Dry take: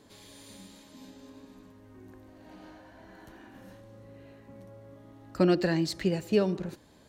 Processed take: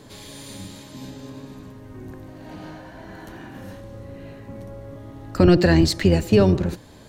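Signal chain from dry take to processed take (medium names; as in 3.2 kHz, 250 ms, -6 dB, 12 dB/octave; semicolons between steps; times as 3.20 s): octave divider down 1 oct, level -2 dB; loudness maximiser +16 dB; trim -5 dB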